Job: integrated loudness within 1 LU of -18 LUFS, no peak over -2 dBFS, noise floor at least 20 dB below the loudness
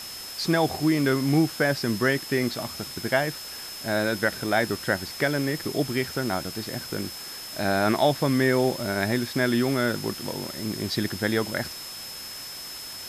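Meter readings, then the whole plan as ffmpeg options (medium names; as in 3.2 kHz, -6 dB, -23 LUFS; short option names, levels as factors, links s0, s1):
steady tone 5.2 kHz; tone level -38 dBFS; noise floor -38 dBFS; noise floor target -46 dBFS; loudness -26.0 LUFS; peak level -8.5 dBFS; loudness target -18.0 LUFS
-> -af "bandreject=f=5200:w=30"
-af "afftdn=nr=8:nf=-38"
-af "volume=2.51,alimiter=limit=0.794:level=0:latency=1"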